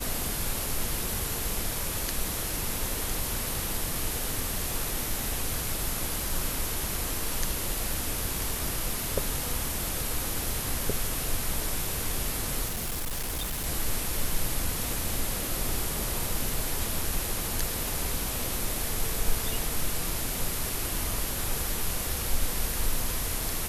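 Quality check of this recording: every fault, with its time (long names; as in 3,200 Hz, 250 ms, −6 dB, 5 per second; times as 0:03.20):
0:12.67–0:13.67: clipping −28 dBFS
0:17.88: click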